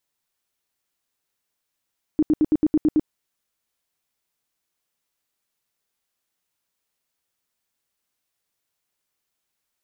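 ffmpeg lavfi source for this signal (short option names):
-f lavfi -i "aevalsrc='0.211*sin(2*PI*307*mod(t,0.11))*lt(mod(t,0.11),11/307)':d=0.88:s=44100"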